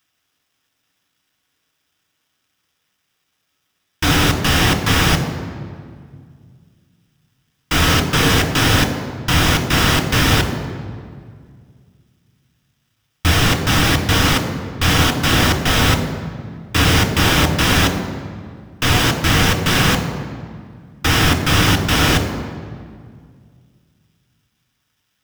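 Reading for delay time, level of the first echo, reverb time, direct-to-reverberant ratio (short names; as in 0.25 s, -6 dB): none, none, 2.0 s, 4.5 dB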